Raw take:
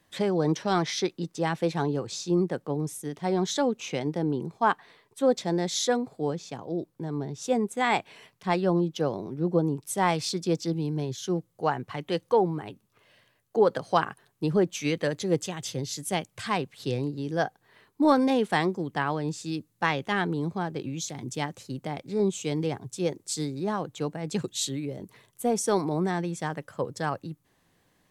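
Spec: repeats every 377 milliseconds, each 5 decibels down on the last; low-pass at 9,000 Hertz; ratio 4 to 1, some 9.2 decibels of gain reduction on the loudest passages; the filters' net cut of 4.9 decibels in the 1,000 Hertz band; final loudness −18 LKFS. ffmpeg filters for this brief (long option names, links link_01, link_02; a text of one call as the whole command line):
ffmpeg -i in.wav -af "lowpass=9000,equalizer=frequency=1000:width_type=o:gain=-6.5,acompressor=threshold=-29dB:ratio=4,aecho=1:1:377|754|1131|1508|1885|2262|2639:0.562|0.315|0.176|0.0988|0.0553|0.031|0.0173,volume=15dB" out.wav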